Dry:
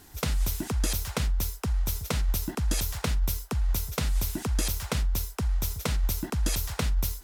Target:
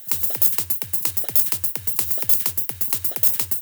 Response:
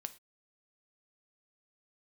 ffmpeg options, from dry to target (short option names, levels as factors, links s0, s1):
-filter_complex "[0:a]asetrate=88200,aresample=44100,aemphasis=mode=production:type=riaa,asplit=2[s0][s1];[1:a]atrim=start_sample=2205[s2];[s1][s2]afir=irnorm=-1:irlink=0,volume=1.41[s3];[s0][s3]amix=inputs=2:normalize=0,volume=0.376"